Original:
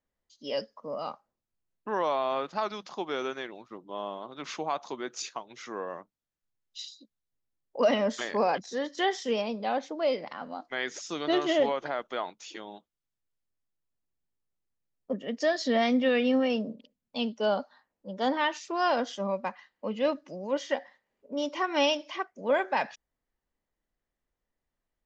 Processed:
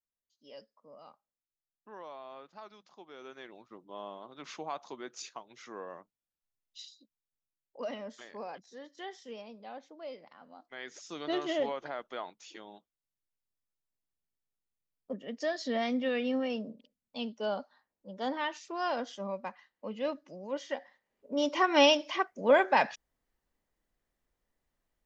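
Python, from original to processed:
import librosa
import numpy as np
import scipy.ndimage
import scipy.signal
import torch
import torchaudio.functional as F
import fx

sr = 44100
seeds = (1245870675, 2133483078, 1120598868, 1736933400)

y = fx.gain(x, sr, db=fx.line((3.14, -18.0), (3.55, -7.0), (6.81, -7.0), (8.14, -16.0), (10.41, -16.0), (11.22, -6.5), (20.77, -6.5), (21.53, 3.0)))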